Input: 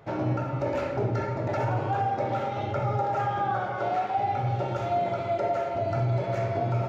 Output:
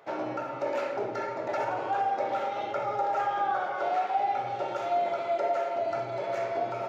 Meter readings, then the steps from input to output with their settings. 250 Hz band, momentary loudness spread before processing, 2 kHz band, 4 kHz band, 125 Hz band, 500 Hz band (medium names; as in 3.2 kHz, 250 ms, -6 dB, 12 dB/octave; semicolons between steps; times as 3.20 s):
-7.5 dB, 2 LU, 0.0 dB, 0.0 dB, -21.5 dB, -1.0 dB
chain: high-pass 420 Hz 12 dB/octave